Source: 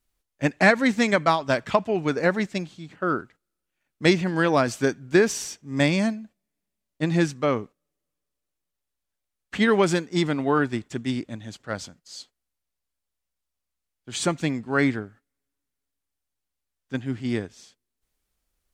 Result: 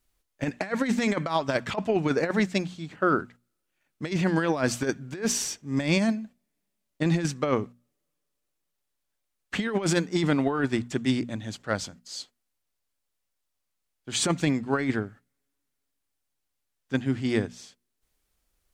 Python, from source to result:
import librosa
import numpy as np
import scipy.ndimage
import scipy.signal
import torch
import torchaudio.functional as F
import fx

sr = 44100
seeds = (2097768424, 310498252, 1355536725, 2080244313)

y = fx.hum_notches(x, sr, base_hz=60, count=4)
y = fx.over_compress(y, sr, threshold_db=-23.0, ratio=-0.5)